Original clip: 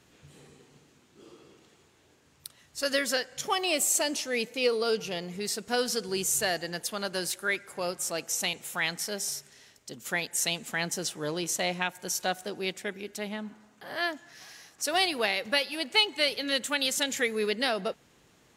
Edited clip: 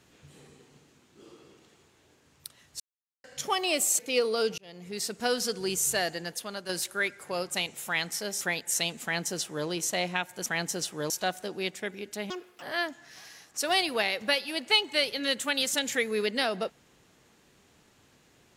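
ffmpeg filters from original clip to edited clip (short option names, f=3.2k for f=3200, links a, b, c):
-filter_complex "[0:a]asplit=12[a][b][c][d][e][f][g][h][i][j][k][l];[a]atrim=end=2.8,asetpts=PTS-STARTPTS,afade=t=out:st=2.796:d=0.004:c=hsin[m];[b]atrim=start=2.8:end=3.24,asetpts=PTS-STARTPTS,volume=0[n];[c]atrim=start=3.24:end=3.992,asetpts=PTS-STARTPTS,afade=t=in:d=0.004:c=hsin[o];[d]atrim=start=4.468:end=5.06,asetpts=PTS-STARTPTS,afade=t=out:st=0.588:d=0.004:c=hsin[p];[e]atrim=start=5.06:end=7.17,asetpts=PTS-STARTPTS,afade=t=in:d=0.49,afade=t=out:st=1.52:d=0.59:silence=0.446684[q];[f]atrim=start=7.17:end=8.022,asetpts=PTS-STARTPTS,afade=t=in:d=0.004:c=hsin:silence=0.446684[r];[g]atrim=start=8.408:end=9.282[s];[h]atrim=start=10.068:end=12.122[t];[i]atrim=start=10.688:end=11.332[u];[j]atrim=start=12.118:end=13.324[v];[k]atrim=start=13.32:end=13.86,asetpts=PTS-STARTPTS,asetrate=74970,aresample=44100,atrim=end_sample=14008,asetpts=PTS-STARTPTS[w];[l]atrim=start=13.856[x];[m][n][o]concat=n=3:v=0:a=1[y];[p][q][r]concat=n=3:v=0:a=1[z];[y][z]acrossfade=d=0.004:c1=hsin:c2=hsin[aa];[aa][s]acrossfade=d=0.004:c1=hsin:c2=hsin[ab];[ab][t]acrossfade=d=0.004:c1=hsin:c2=hsin[ac];[ac][u]acrossfade=d=0.004:c1=hsin:c2=hsin[ad];[ad][v]acrossfade=d=0.004:c1=hsin:c2=hsin[ae];[ae][w]acrossfade=d=0.004:c1=hsin:c2=hsin[af];[af][x]acrossfade=d=0.004:c1=hsin:c2=hsin"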